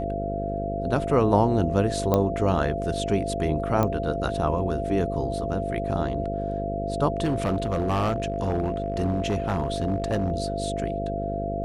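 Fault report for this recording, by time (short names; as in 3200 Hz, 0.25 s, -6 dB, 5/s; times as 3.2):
buzz 50 Hz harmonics 11 -31 dBFS
tone 680 Hz -29 dBFS
2.14 pop -9 dBFS
3.83 pop -11 dBFS
7.23–10.31 clipped -19.5 dBFS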